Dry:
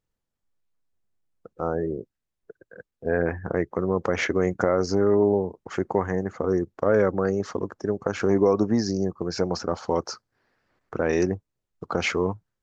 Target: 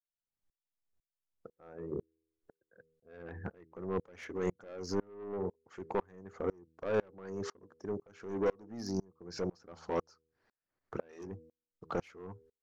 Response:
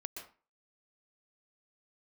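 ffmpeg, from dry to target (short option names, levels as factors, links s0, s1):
-af "bandreject=f=80.55:t=h:w=4,bandreject=f=161.1:t=h:w=4,bandreject=f=241.65:t=h:w=4,bandreject=f=322.2:t=h:w=4,bandreject=f=402.75:t=h:w=4,bandreject=f=483.3:t=h:w=4,asoftclip=type=tanh:threshold=0.1,aeval=exprs='val(0)*pow(10,-33*if(lt(mod(-2*n/s,1),2*abs(-2)/1000),1-mod(-2*n/s,1)/(2*abs(-2)/1000),(mod(-2*n/s,1)-2*abs(-2)/1000)/(1-2*abs(-2)/1000))/20)':c=same,volume=0.75"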